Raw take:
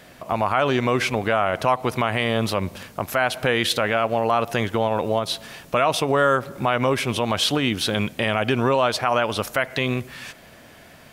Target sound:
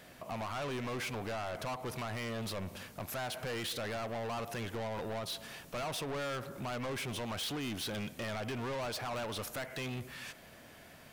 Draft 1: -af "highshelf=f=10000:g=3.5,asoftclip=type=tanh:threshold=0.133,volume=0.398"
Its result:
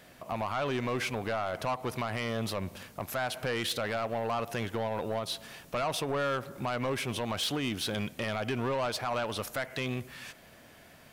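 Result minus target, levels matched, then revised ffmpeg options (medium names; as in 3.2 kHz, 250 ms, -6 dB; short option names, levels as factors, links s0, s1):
saturation: distortion -7 dB
-af "highshelf=f=10000:g=3.5,asoftclip=type=tanh:threshold=0.0422,volume=0.398"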